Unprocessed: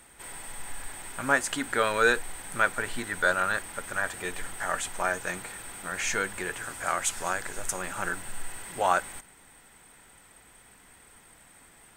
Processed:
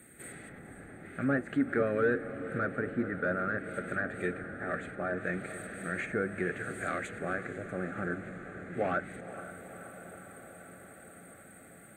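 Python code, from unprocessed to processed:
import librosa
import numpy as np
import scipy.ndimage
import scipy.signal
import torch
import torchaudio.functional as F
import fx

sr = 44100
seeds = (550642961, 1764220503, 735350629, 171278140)

p1 = np.clip(x, -10.0 ** (-21.0 / 20.0), 10.0 ** (-21.0 / 20.0))
p2 = fx.low_shelf(p1, sr, hz=240.0, db=10.5)
p3 = fx.fixed_phaser(p2, sr, hz=2300.0, stages=4)
p4 = fx.env_lowpass_down(p3, sr, base_hz=1300.0, full_db=-25.5)
p5 = scipy.signal.sosfilt(scipy.signal.butter(2, 170.0, 'highpass', fs=sr, output='sos'), p4)
p6 = fx.peak_eq(p5, sr, hz=3000.0, db=-14.5, octaves=0.68)
p7 = p6 + fx.echo_diffused(p6, sr, ms=481, feedback_pct=73, wet_db=-12.5, dry=0)
y = p7 * librosa.db_to_amplitude(3.0)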